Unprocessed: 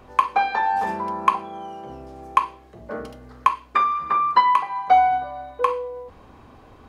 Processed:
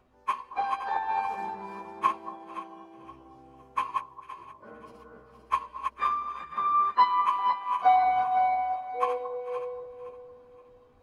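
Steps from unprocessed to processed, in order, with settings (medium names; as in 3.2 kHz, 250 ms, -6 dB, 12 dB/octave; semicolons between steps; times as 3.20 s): backward echo that repeats 162 ms, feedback 59%, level -4 dB; plain phase-vocoder stretch 1.6×; on a send: echo whose repeats swap between lows and highs 224 ms, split 1.1 kHz, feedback 52%, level -8.5 dB; on the sum: upward expansion 1.5:1, over -31 dBFS; trim -5 dB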